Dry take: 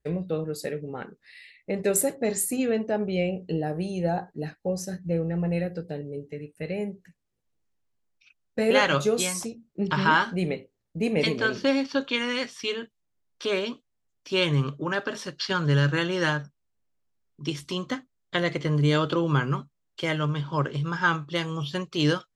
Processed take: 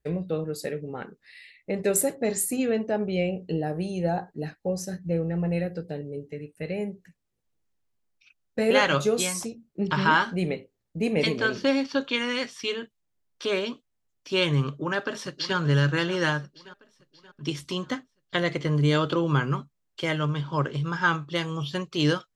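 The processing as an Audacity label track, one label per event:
14.670000	15.570000	echo throw 0.58 s, feedback 50%, level -14.5 dB

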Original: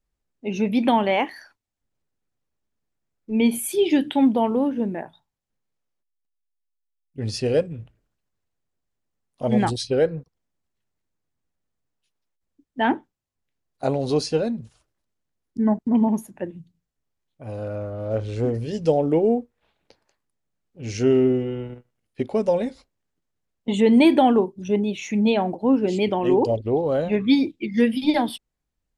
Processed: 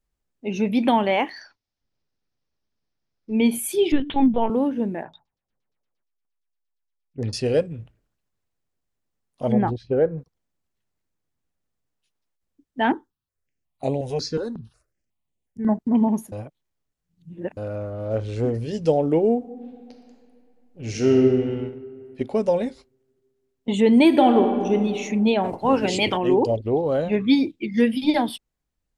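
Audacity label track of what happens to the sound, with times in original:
1.300000	3.330000	resonant high shelf 6900 Hz -10.5 dB, Q 3
3.920000	4.500000	LPC vocoder at 8 kHz pitch kept
5.020000	7.330000	LFO low-pass saw down 8.6 Hz 400–6300 Hz
9.520000	10.180000	LPF 1300 Hz
12.920000	15.690000	step phaser 5.5 Hz 650–5100 Hz
16.320000	17.570000	reverse
19.360000	21.150000	reverb throw, RT60 2.4 s, DRR 2.5 dB
21.690000	22.210000	compressor 1.5:1, threshold -41 dBFS
24.060000	24.740000	reverb throw, RT60 2.1 s, DRR 4.5 dB
25.430000	26.160000	spectral limiter ceiling under each frame's peak by 19 dB

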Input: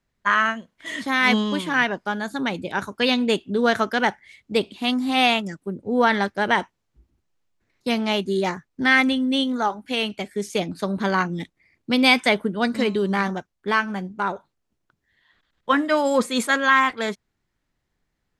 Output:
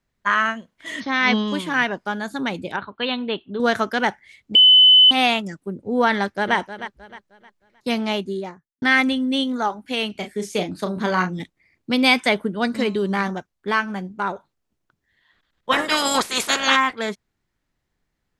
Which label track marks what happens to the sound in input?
1.000000	1.480000	brick-wall FIR low-pass 6400 Hz
2.760000	3.600000	rippled Chebyshev low-pass 4300 Hz, ripple 6 dB
4.550000	5.110000	bleep 3020 Hz -7.5 dBFS
6.160000	6.560000	echo throw 0.31 s, feedback 35%, level -12 dB
8.000000	8.820000	studio fade out
10.120000	11.400000	doubler 33 ms -7 dB
15.710000	16.750000	spectral limiter ceiling under each frame's peak by 26 dB

